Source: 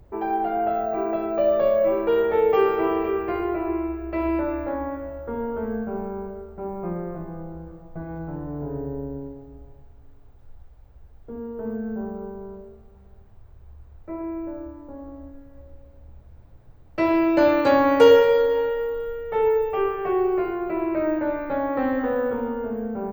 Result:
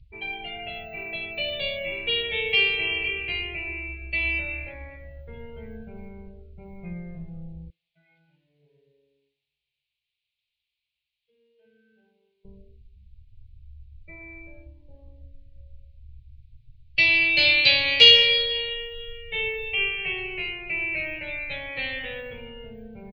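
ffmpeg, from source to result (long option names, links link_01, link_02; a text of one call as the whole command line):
ffmpeg -i in.wav -filter_complex "[0:a]asettb=1/sr,asplit=3[link_01][link_02][link_03];[link_01]atrim=end=7.704[link_04];[link_02]atrim=start=7.7:end=12.45,asetpts=PTS-STARTPTS,afade=type=in:duration=0.004:curve=qsin,afade=type=out:start_time=4.746:duration=0.004:curve=qsin,bandpass=frequency=2900:width_type=q:width=0.89[link_05];[link_03]atrim=start=12.446[link_06];[link_04][link_05]acrossfade=duration=0.004:curve1=hsin:curve2=qsin[link_07];[link_07][link_06]acrossfade=duration=0.004:curve1=qsin:curve2=hsin,asettb=1/sr,asplit=3[link_08][link_09][link_10];[link_08]atrim=end=19.804[link_11];[link_09]atrim=start=19.8:end=22.21,asetpts=PTS-STARTPTS,afade=type=in:duration=0.004:curve=qsin,afade=type=out:start_time=2.406:duration=0.004:curve=qsin,equalizer=frequency=1600:width=0.83:gain=2.5[link_12];[link_10]atrim=start=22.206[link_13];[link_11][link_12]acrossfade=duration=0.004:curve1=hsin:curve2=qsin[link_14];[link_14][link_13]acrossfade=duration=0.004:curve1=qsin:curve2=hsin,highshelf=frequency=1700:width_type=q:width=1.5:gain=11,afftdn=noise_reduction=21:noise_floor=-40,firequalizer=gain_entry='entry(160,0);entry(260,-23);entry(450,-13);entry(1300,-20);entry(2400,6);entry(4300,9);entry(6200,-10);entry(12000,-24)':delay=0.05:min_phase=1" out.wav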